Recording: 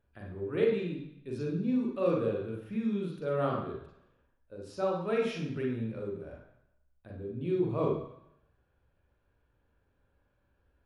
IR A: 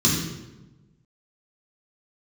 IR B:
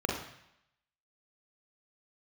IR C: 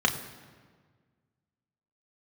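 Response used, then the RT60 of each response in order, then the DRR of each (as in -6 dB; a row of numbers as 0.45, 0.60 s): B; 1.1, 0.75, 1.6 s; -6.0, -2.0, 2.5 dB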